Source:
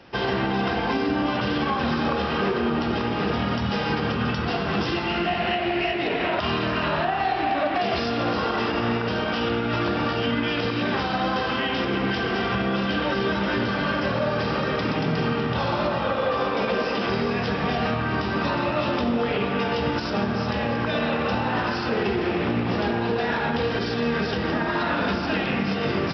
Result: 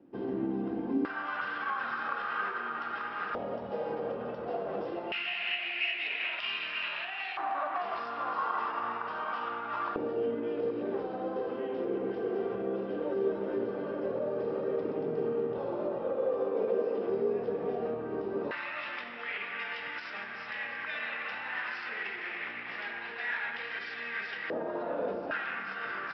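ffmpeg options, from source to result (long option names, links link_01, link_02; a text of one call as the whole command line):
ffmpeg -i in.wav -af "asetnsamples=nb_out_samples=441:pad=0,asendcmd='1.05 bandpass f 1400;3.35 bandpass f 550;5.12 bandpass f 2500;7.37 bandpass f 1100;9.96 bandpass f 430;18.51 bandpass f 2000;24.5 bandpass f 520;25.31 bandpass f 1500',bandpass=frequency=290:width_type=q:width=3.7:csg=0" out.wav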